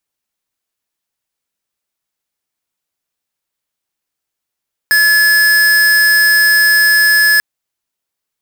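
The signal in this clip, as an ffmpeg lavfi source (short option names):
-f lavfi -i "aevalsrc='0.335*(2*lt(mod(1710*t,1),0.5)-1)':d=2.49:s=44100"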